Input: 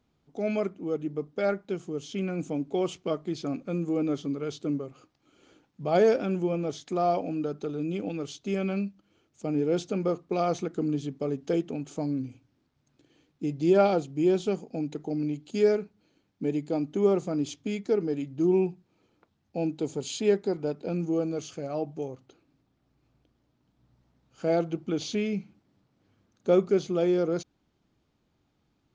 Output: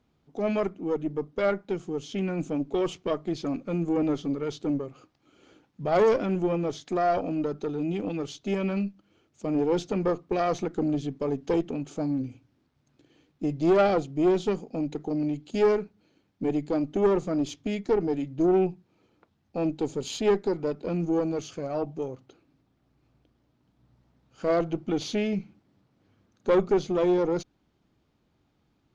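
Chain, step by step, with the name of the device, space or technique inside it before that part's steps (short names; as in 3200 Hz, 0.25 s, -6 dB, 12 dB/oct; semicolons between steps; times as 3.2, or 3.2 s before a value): tube preamp driven hard (tube stage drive 20 dB, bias 0.55; high shelf 6500 Hz -6.5 dB); gain +5 dB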